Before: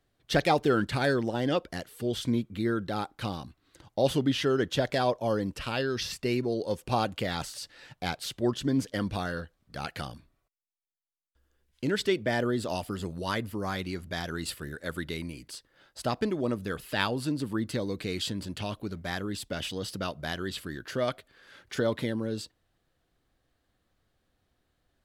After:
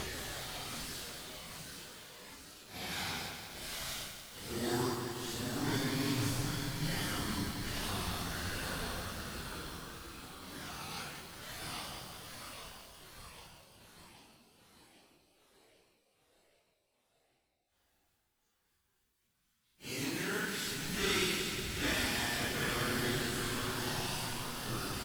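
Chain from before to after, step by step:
compressing power law on the bin magnitudes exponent 0.5
parametric band 590 Hz −7.5 dB 0.55 octaves
on a send: echo with shifted repeats 175 ms, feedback 58%, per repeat −120 Hz, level −4.5 dB
on the sum: extreme stretch with random phases 4.5×, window 0.05 s, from 0:07.41
feedback echo at a low word length 181 ms, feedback 80%, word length 7 bits, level −6.5 dB
level −9 dB

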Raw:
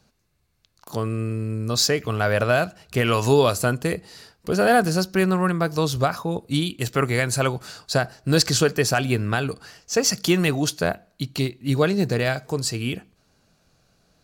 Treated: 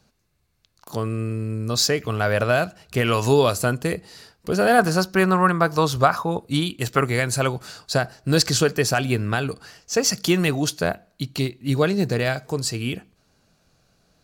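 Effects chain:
0:04.78–0:06.99: dynamic equaliser 1,100 Hz, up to +8 dB, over −37 dBFS, Q 0.91

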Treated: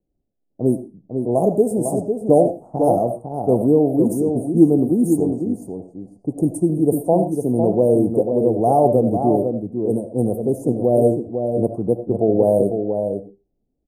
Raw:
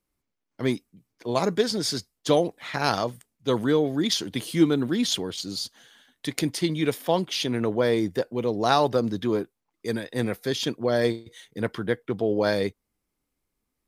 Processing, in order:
low-pass that shuts in the quiet parts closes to 670 Hz, open at −22.5 dBFS
Chebyshev band-stop filter 760–8,600 Hz, order 4
slap from a distant wall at 86 metres, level −6 dB
on a send at −8 dB: convolution reverb RT60 0.25 s, pre-delay 40 ms
on the sum: level +7.5 dB

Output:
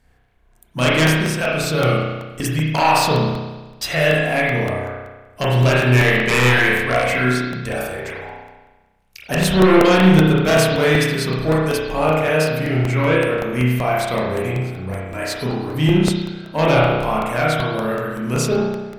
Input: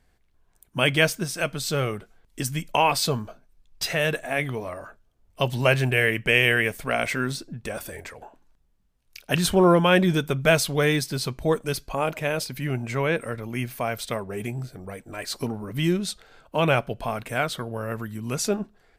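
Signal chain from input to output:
sine wavefolder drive 11 dB, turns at −3 dBFS
spring reverb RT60 1.2 s, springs 32 ms, chirp 80 ms, DRR −6 dB
regular buffer underruns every 0.19 s, samples 64, repeat, from 0:00.88
level −12 dB

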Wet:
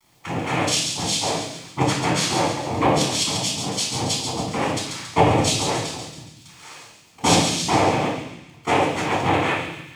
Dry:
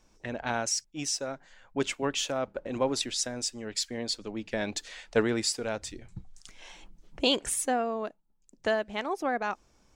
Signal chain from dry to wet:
Butterworth high-pass 210 Hz
cochlear-implant simulation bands 4
bit reduction 11 bits
delay with a high-pass on its return 139 ms, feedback 51%, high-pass 2,400 Hz, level −5.5 dB
convolution reverb RT60 0.70 s, pre-delay 11 ms, DRR −3.5 dB
level +2.5 dB

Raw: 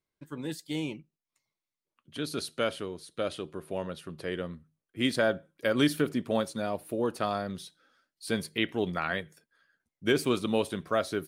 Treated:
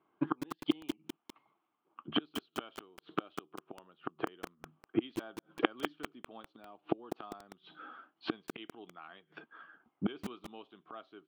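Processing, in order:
low-pass that shuts in the quiet parts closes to 1,400 Hz, open at −24 dBFS
gate with flip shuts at −32 dBFS, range −39 dB
loudspeaker in its box 250–3,300 Hz, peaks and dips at 320 Hz +5 dB, 540 Hz −9 dB, 780 Hz +7 dB, 1,200 Hz +8 dB, 1,900 Hz −8 dB, 3,100 Hz +8 dB
feedback echo at a low word length 199 ms, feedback 55%, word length 9 bits, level −6 dB
level +17 dB

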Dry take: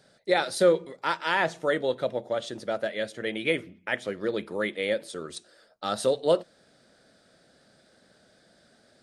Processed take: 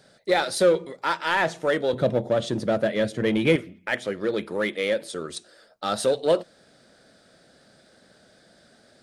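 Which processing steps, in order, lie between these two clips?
0:01.93–0:03.56: parametric band 130 Hz +13 dB 3 octaves
in parallel at −4 dB: gain into a clipping stage and back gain 27 dB

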